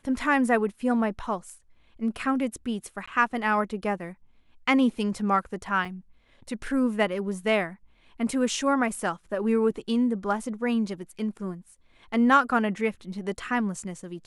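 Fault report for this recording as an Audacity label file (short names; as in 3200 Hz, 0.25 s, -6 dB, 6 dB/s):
3.060000	3.080000	gap 15 ms
5.850000	5.850000	gap 4.5 ms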